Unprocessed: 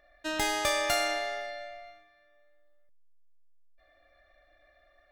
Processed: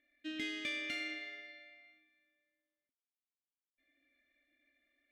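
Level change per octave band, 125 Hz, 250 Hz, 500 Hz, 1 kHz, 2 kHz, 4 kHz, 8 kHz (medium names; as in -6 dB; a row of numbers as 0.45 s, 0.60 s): under -15 dB, -4.0 dB, -21.0 dB, -27.5 dB, -8.0 dB, -10.5 dB, -22.5 dB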